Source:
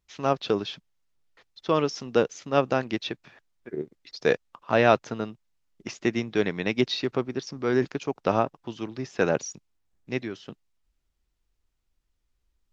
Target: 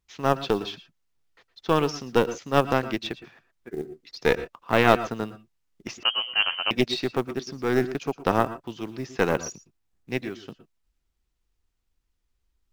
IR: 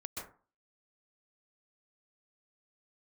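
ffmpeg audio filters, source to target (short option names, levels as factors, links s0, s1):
-filter_complex "[0:a]aeval=exprs='0.596*(cos(1*acos(clip(val(0)/0.596,-1,1)))-cos(1*PI/2))+0.0376*(cos(3*acos(clip(val(0)/0.596,-1,1)))-cos(3*PI/2))+0.0668*(cos(4*acos(clip(val(0)/0.596,-1,1)))-cos(4*PI/2))':c=same,acrusher=bits=7:mode=log:mix=0:aa=0.000001,bandreject=f=600:w=12,asplit=2[s0][s1];[1:a]atrim=start_sample=2205,atrim=end_sample=6174,asetrate=48510,aresample=44100[s2];[s1][s2]afir=irnorm=-1:irlink=0,volume=0.473[s3];[s0][s3]amix=inputs=2:normalize=0,asettb=1/sr,asplit=3[s4][s5][s6];[s4]atrim=end=6.034[s7];[s5]atrim=start=6.03:end=6.71,asetpts=PTS-STARTPTS,afade=t=in:d=0.004:c=qsin,afade=t=out:st=0.676:d=0.004:c=qsin,lowpass=f=2700:t=q:w=0.5098,lowpass=f=2700:t=q:w=0.6013,lowpass=f=2700:t=q:w=0.9,lowpass=f=2700:t=q:w=2.563,afreqshift=-3200[s8];[s6]atrim=start=6.706[s9];[s7][s8]acrossfade=d=0.004:c1=hsin:c2=qsin[s10];[s10][s9]acrossfade=d=0.004:c1=qsin:c2=hsin"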